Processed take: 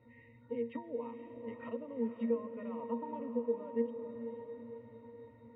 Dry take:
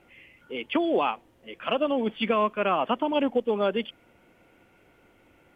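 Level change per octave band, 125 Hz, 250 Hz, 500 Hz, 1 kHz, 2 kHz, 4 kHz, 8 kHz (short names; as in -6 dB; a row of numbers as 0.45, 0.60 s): -11.0 dB, -9.5 dB, -10.5 dB, -19.0 dB, -22.5 dB, under -30 dB, n/a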